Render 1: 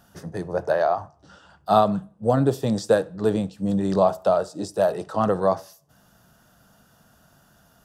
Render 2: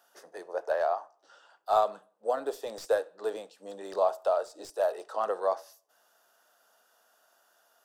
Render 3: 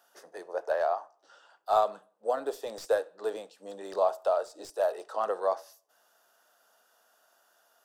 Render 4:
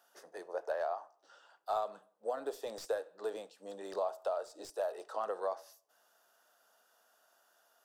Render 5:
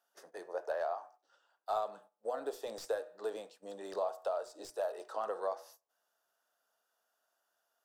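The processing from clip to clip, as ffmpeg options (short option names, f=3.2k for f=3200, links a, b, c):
-filter_complex "[0:a]highpass=f=440:w=0.5412,highpass=f=440:w=1.3066,acrossover=split=2000[a][b];[b]aeval=exprs='clip(val(0),-1,0.00841)':c=same[c];[a][c]amix=inputs=2:normalize=0,volume=-6.5dB"
-af anull
-af "acompressor=threshold=-30dB:ratio=2.5,volume=-3.5dB"
-af "bandreject=f=122.6:t=h:w=4,bandreject=f=245.2:t=h:w=4,bandreject=f=367.8:t=h:w=4,bandreject=f=490.4:t=h:w=4,bandreject=f=613:t=h:w=4,bandreject=f=735.6:t=h:w=4,bandreject=f=858.2:t=h:w=4,bandreject=f=980.8:t=h:w=4,bandreject=f=1.1034k:t=h:w=4,bandreject=f=1.226k:t=h:w=4,bandreject=f=1.3486k:t=h:w=4,bandreject=f=1.4712k:t=h:w=4,bandreject=f=1.5938k:t=h:w=4,bandreject=f=1.7164k:t=h:w=4,bandreject=f=1.839k:t=h:w=4,bandreject=f=1.9616k:t=h:w=4,bandreject=f=2.0842k:t=h:w=4,bandreject=f=2.2068k:t=h:w=4,bandreject=f=2.3294k:t=h:w=4,bandreject=f=2.452k:t=h:w=4,agate=range=-11dB:threshold=-58dB:ratio=16:detection=peak"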